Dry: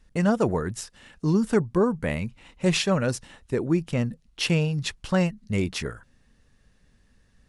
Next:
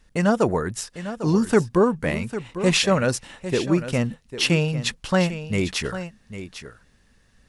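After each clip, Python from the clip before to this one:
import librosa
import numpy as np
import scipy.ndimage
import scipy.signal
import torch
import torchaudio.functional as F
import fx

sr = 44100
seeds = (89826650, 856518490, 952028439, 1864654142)

y = fx.low_shelf(x, sr, hz=320.0, db=-5.0)
y = fx.rider(y, sr, range_db=10, speed_s=2.0)
y = y + 10.0 ** (-12.0 / 20.0) * np.pad(y, (int(800 * sr / 1000.0), 0))[:len(y)]
y = y * 10.0 ** (4.0 / 20.0)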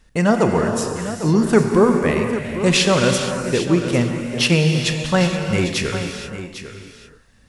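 y = fx.rev_gated(x, sr, seeds[0], gate_ms=500, shape='flat', drr_db=3.5)
y = y * 10.0 ** (3.0 / 20.0)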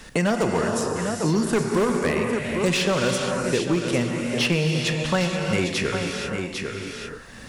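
y = fx.low_shelf(x, sr, hz=210.0, db=-4.5)
y = np.clip(y, -10.0 ** (-11.5 / 20.0), 10.0 ** (-11.5 / 20.0))
y = fx.band_squash(y, sr, depth_pct=70)
y = y * 10.0 ** (-3.5 / 20.0)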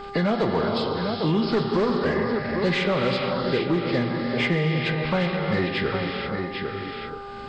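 y = fx.freq_compress(x, sr, knee_hz=1200.0, ratio=1.5)
y = 10.0 ** (-11.0 / 20.0) * np.tanh(y / 10.0 ** (-11.0 / 20.0))
y = fx.dmg_buzz(y, sr, base_hz=400.0, harmonics=3, level_db=-38.0, tilt_db=-1, odd_only=False)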